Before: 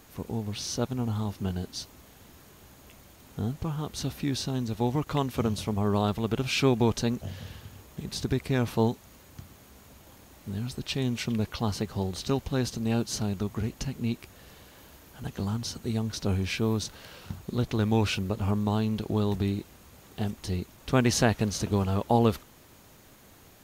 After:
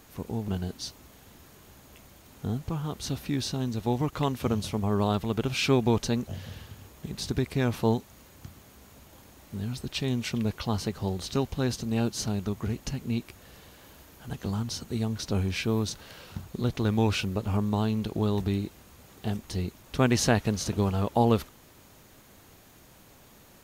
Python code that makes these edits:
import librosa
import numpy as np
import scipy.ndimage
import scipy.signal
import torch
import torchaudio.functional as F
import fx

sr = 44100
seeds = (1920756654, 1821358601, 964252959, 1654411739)

y = fx.edit(x, sr, fx.cut(start_s=0.48, length_s=0.94), tone=tone)